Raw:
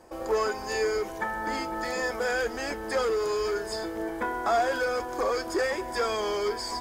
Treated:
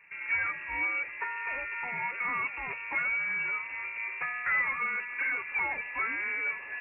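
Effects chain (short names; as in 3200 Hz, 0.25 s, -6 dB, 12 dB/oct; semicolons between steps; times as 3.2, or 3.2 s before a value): inverted band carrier 2700 Hz; gain -4 dB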